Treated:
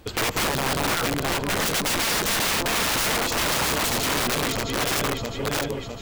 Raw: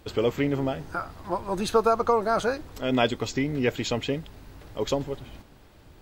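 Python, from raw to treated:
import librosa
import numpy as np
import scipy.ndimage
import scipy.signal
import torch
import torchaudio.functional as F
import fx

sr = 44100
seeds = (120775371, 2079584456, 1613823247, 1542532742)

y = fx.reverse_delay_fb(x, sr, ms=329, feedback_pct=75, wet_db=-3.5)
y = (np.mod(10.0 ** (22.5 / 20.0) * y + 1.0, 2.0) - 1.0) / 10.0 ** (22.5 / 20.0)
y = y * librosa.db_to_amplitude(4.0)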